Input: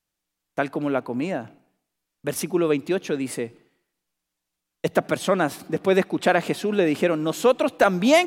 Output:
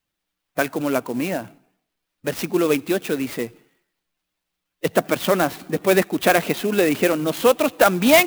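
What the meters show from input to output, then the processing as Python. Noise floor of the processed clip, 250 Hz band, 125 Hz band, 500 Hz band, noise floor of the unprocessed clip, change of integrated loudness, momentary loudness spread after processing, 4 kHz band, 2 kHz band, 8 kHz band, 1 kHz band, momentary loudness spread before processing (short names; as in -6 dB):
-81 dBFS, +2.0 dB, +1.0 dB, +2.0 dB, -83 dBFS, +2.5 dB, 11 LU, +4.5 dB, +4.0 dB, +6.0 dB, +2.5 dB, 10 LU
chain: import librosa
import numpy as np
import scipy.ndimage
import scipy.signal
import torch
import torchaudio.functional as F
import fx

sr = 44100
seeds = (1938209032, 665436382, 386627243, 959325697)

y = fx.spec_quant(x, sr, step_db=15)
y = scipy.ndimage.gaussian_filter1d(y, 1.5, mode='constant')
y = fx.high_shelf(y, sr, hz=2300.0, db=10.5)
y = fx.clock_jitter(y, sr, seeds[0], jitter_ms=0.038)
y = y * librosa.db_to_amplitude(2.0)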